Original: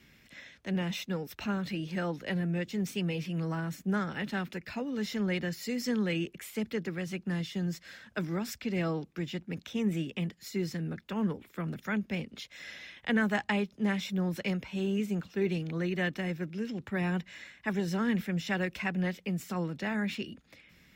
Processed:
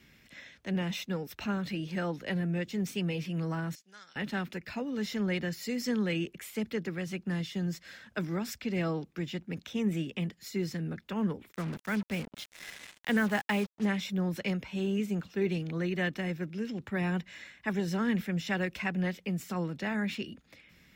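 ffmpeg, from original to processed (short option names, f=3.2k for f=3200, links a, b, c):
-filter_complex "[0:a]asettb=1/sr,asplit=3[a][b][c];[a]atrim=end=3.754[d];[b]atrim=start=3.75:end=4.16,asetpts=PTS-STARTPTS,afade=t=in:d=0.004:c=qsin,afade=t=out:st=0.406:d=0.004:c=qsin,bandpass=f=5.1k:t=q:w=1.9[e];[c]atrim=start=4.156[f];[d][e]acrossfade=d=0.004:c1=hsin:c2=qsin[g];[g][f]acrossfade=d=0.004:c1=qsin:c2=hsin,asplit=3[h][i][j];[h]afade=t=out:st=11.51:d=0.02[k];[i]acrusher=bits=6:mix=0:aa=0.5,afade=t=in:st=11.51:d=0.02,afade=t=out:st=13.84:d=0.02[l];[j]afade=t=in:st=13.84:d=0.02[m];[k][l][m]amix=inputs=3:normalize=0"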